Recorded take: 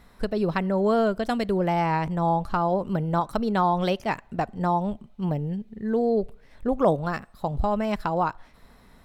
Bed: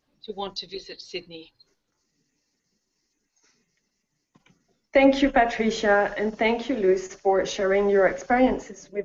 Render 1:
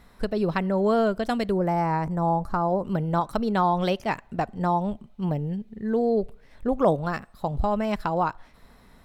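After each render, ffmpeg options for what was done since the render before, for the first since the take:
-filter_complex "[0:a]asettb=1/sr,asplit=3[a][b][c];[a]atrim=end=1.524[d];[b]atrim=start=1.52:end=2.84,asetpts=PTS-STARTPTS,afade=t=in:d=0.004:c=qsin,afade=t=out:st=1.316:d=0.004:c=qsin,equalizer=f=3.1k:w=1.5:g=-14[e];[c]atrim=start=2.836[f];[d][e]acrossfade=d=0.004:c1=hsin:c2=qsin[g];[g][f]acrossfade=d=0.004:c1=qsin:c2=hsin"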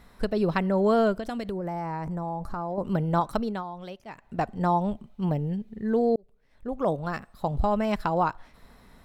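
-filter_complex "[0:a]asettb=1/sr,asplit=3[a][b][c];[a]atrim=end=1.144[d];[b]atrim=start=1.14:end=2.78,asetpts=PTS-STARTPTS,afade=t=in:d=0.004:c=qsin,afade=t=out:st=1.636:d=0.004:c=qsin,acompressor=threshold=-28dB:ratio=6:attack=3.2:release=140:knee=1:detection=peak[e];[c]atrim=start=2.776[f];[d][e]acrossfade=d=0.004:c1=hsin:c2=qsin[g];[g][f]acrossfade=d=0.004:c1=qsin:c2=hsin,asplit=4[h][i][j][k];[h]atrim=end=3.64,asetpts=PTS-STARTPTS,afade=t=out:st=3.33:d=0.31:silence=0.16788[l];[i]atrim=start=3.64:end=4.13,asetpts=PTS-STARTPTS,volume=-15.5dB[m];[j]atrim=start=4.13:end=6.16,asetpts=PTS-STARTPTS,afade=t=in:d=0.31:silence=0.16788,afade=t=out:st=2.026:d=0.004:c=hsin[n];[k]atrim=start=6.16,asetpts=PTS-STARTPTS,afade=t=in:d=1.32[o];[l][m][n][o]concat=n=4:v=0:a=1"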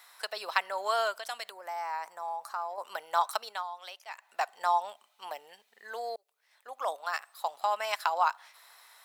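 -af "highpass=f=770:w=0.5412,highpass=f=770:w=1.3066,highshelf=f=3.3k:g=10.5"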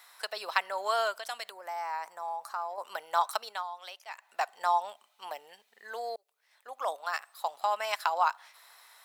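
-af anull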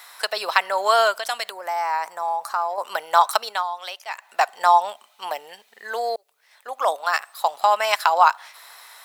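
-af "volume=11.5dB,alimiter=limit=-2dB:level=0:latency=1"

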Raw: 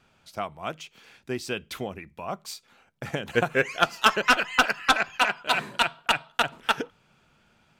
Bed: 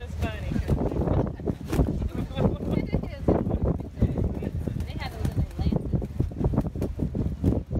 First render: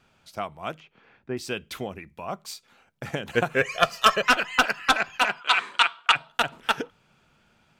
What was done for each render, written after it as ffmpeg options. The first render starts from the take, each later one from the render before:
-filter_complex "[0:a]asettb=1/sr,asplit=3[a][b][c];[a]atrim=end=0.804[d];[b]atrim=start=0.8:end=1.37,asetpts=PTS-STARTPTS,afade=t=in:d=0.004:c=qsin,afade=t=out:st=0.566:d=0.004:c=qsin,lowpass=1.7k[e];[c]atrim=start=1.366[f];[d][e]acrossfade=d=0.004:c1=hsin:c2=qsin[g];[g][f]acrossfade=d=0.004:c1=qsin:c2=hsin,asettb=1/sr,asplit=3[h][i][j];[h]atrim=end=3.614[k];[i]atrim=start=3.61:end=4.23,asetpts=PTS-STARTPTS,afade=t=in:d=0.004:c=qsin,afade=t=out:st=0.616:d=0.004:c=qsin,aecho=1:1:1.7:0.75,atrim=end_sample=27342[l];[j]atrim=start=4.226[m];[k][l]acrossfade=d=0.004:c1=hsin:c2=qsin[n];[n][m]acrossfade=d=0.004:c1=qsin:c2=hsin,asplit=3[o][p][q];[o]afade=t=out:st=5.4:d=0.02[r];[p]highpass=500,equalizer=f=610:t=q:w=4:g=-10,equalizer=f=1.2k:t=q:w=4:g=9,equalizer=f=2.2k:t=q:w=4:g=6,equalizer=f=3.3k:t=q:w=4:g=6,lowpass=f=9.2k:w=0.5412,lowpass=f=9.2k:w=1.3066,afade=t=in:st=5.4:d=0.02,afade=t=out:st=6.14:d=0.02[s];[q]afade=t=in:st=6.14:d=0.02[t];[r][s][t]amix=inputs=3:normalize=0"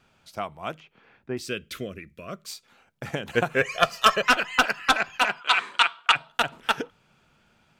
-filter_complex "[0:a]asettb=1/sr,asplit=3[a][b][c];[a]atrim=end=1.414[d];[b]atrim=start=1.41:end=2.48,asetpts=PTS-STARTPTS,afade=t=in:d=0.004:c=qsin,afade=t=out:st=1.066:d=0.004:c=qsin,asuperstop=centerf=850:order=4:qfactor=1.5[e];[c]atrim=start=2.476[f];[d][e]acrossfade=d=0.004:c1=hsin:c2=qsin[g];[g][f]acrossfade=d=0.004:c1=qsin:c2=hsin"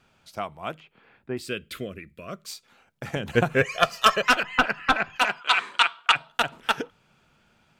-filter_complex "[0:a]asettb=1/sr,asplit=3[a][b][c];[a]atrim=end=0.604[d];[b]atrim=start=0.6:end=2.22,asetpts=PTS-STARTPTS,afade=t=in:d=0.004:c=qsin,afade=t=out:st=1.616:d=0.004:c=qsin,equalizer=f=5.9k:t=o:w=0.29:g=-8.5[e];[c]atrim=start=2.216[f];[d][e]acrossfade=d=0.004:c1=hsin:c2=qsin[g];[g][f]acrossfade=d=0.004:c1=qsin:c2=hsin,asettb=1/sr,asplit=3[h][i][j];[h]atrim=end=3.164[k];[i]atrim=start=3.16:end=3.65,asetpts=PTS-STARTPTS,afade=t=in:d=0.004:c=qsin,afade=t=out:st=0.486:d=0.004:c=qsin,lowshelf=f=230:g=9.5[l];[j]atrim=start=3.646[m];[k][l]acrossfade=d=0.004:c1=hsin:c2=qsin[n];[n][m]acrossfade=d=0.004:c1=qsin:c2=hsin,asettb=1/sr,asplit=3[o][p][q];[o]atrim=end=4.434[r];[p]atrim=start=4.43:end=5.16,asetpts=PTS-STARTPTS,afade=t=in:d=0.004:c=qsin,afade=t=out:st=0.726:d=0.004:c=qsin,bass=f=250:g=6,treble=f=4k:g=-12[s];[q]atrim=start=5.156[t];[r][s]acrossfade=d=0.004:c1=hsin:c2=qsin[u];[u][t]acrossfade=d=0.004:c1=qsin:c2=hsin"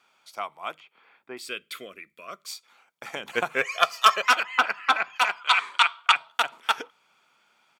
-af "highpass=540,aecho=1:1:0.9:0.31"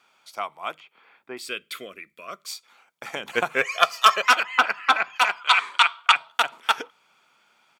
-af "volume=2.5dB,alimiter=limit=-1dB:level=0:latency=1"

